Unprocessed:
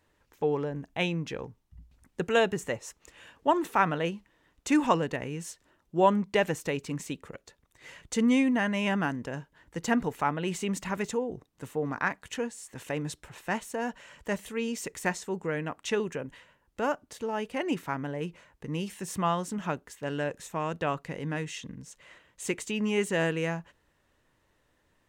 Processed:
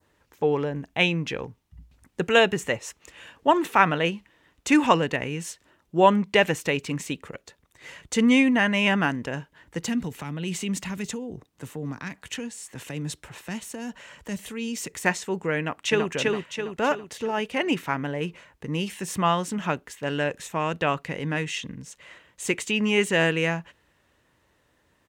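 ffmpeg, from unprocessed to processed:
-filter_complex "[0:a]asettb=1/sr,asplit=3[s0][s1][s2];[s0]atrim=end=9.844[s3];[s1]atrim=start=9.84:end=14.93,asetpts=PTS-STARTPTS,afade=t=in:d=0.004:c=qsin,afade=t=out:st=5.086:d=0.004:c=qsin,acrossover=split=270|3000[s4][s5][s6];[s5]acompressor=threshold=0.00708:ratio=6:attack=3.2:release=140:knee=2.83:detection=peak[s7];[s4][s7][s6]amix=inputs=3:normalize=0[s8];[s2]atrim=start=14.926[s9];[s3][s8]acrossfade=d=0.004:c1=hsin:c2=qsin[s10];[s10][s9]acrossfade=d=0.004:c1=qsin:c2=hsin,asplit=2[s11][s12];[s12]afade=t=in:st=15.58:d=0.01,afade=t=out:st=16.1:d=0.01,aecho=0:1:330|660|990|1320|1650|1980|2310:0.794328|0.397164|0.198582|0.099291|0.0496455|0.0248228|0.0124114[s13];[s11][s13]amix=inputs=2:normalize=0,highpass=47,adynamicequalizer=threshold=0.00501:dfrequency=2600:dqfactor=1.1:tfrequency=2600:tqfactor=1.1:attack=5:release=100:ratio=0.375:range=3:mode=boostabove:tftype=bell,volume=1.68"

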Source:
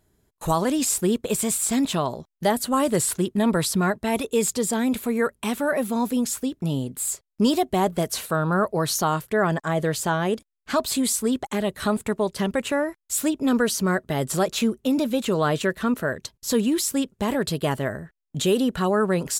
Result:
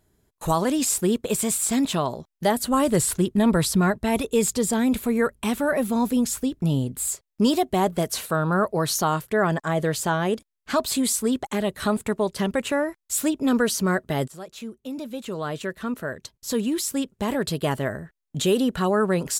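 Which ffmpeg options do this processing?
-filter_complex "[0:a]asettb=1/sr,asplit=3[s0][s1][s2];[s0]atrim=end=2.614[s3];[s1]atrim=start=2.61:end=7.07,asetpts=PTS-STARTPTS,afade=t=in:d=0.004:c=qsin,afade=t=out:st=4.456:d=0.004:c=qsin,lowshelf=f=100:g=12[s4];[s2]atrim=start=7.066[s5];[s3][s4]acrossfade=d=0.004:c1=hsin:c2=qsin[s6];[s6][s5]acrossfade=d=0.004:c1=qsin:c2=hsin,asplit=2[s7][s8];[s7]atrim=end=14.28,asetpts=PTS-STARTPTS,afade=t=out:st=14.276:d=0.004:c=hsin:silence=0.11885[s9];[s8]atrim=start=14.28,asetpts=PTS-STARTPTS,afade=t=in:d=3.52:silence=0.11885[s10];[s9][s10]concat=n=2:v=0:a=1"

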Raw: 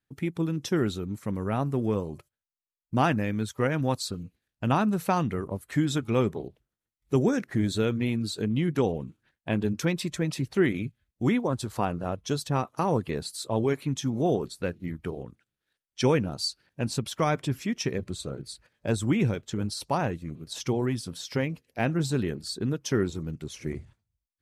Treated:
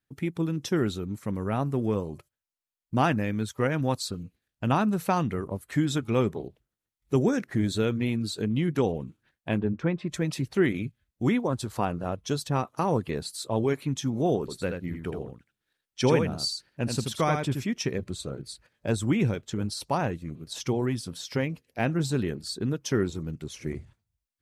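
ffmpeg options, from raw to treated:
-filter_complex "[0:a]asplit=3[s0][s1][s2];[s0]afade=t=out:st=9.58:d=0.02[s3];[s1]lowpass=1700,afade=t=in:st=9.58:d=0.02,afade=t=out:st=10.09:d=0.02[s4];[s2]afade=t=in:st=10.09:d=0.02[s5];[s3][s4][s5]amix=inputs=3:normalize=0,asettb=1/sr,asplit=3[s6][s7][s8];[s6]atrim=end=14.404[s9];[s7]atrim=start=14.4:end=17.64,asetpts=PTS-STARTPTS,afade=t=in:d=0.004:c=qsin,afade=t=out:st=3.236:d=0.004:c=qsin,aecho=1:1:81:0.531,atrim=end_sample=142884[s10];[s8]atrim=start=17.636[s11];[s9][s10]acrossfade=d=0.004:c1=hsin:c2=qsin[s12];[s12][s11]acrossfade=d=0.004:c1=qsin:c2=hsin"

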